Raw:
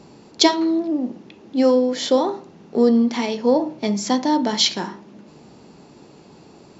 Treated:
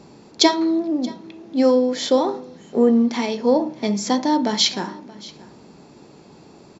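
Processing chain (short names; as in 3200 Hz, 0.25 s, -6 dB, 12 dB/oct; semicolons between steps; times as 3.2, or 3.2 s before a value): notch 2900 Hz, Q 17; echo 0.627 s -21 dB; spectral repair 2.44–3.04, 3200–6400 Hz before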